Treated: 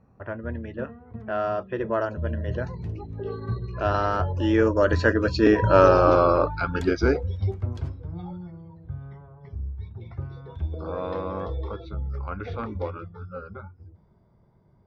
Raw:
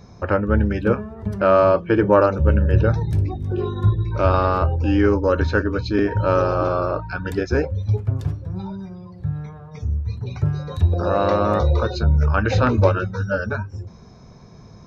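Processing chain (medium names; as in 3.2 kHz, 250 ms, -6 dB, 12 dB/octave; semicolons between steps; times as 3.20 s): Doppler pass-by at 5.99 s, 32 m/s, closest 27 m; level-controlled noise filter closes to 1.7 kHz, open at -21 dBFS; dynamic bell 120 Hz, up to -6 dB, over -40 dBFS, Q 1.7; trim +3.5 dB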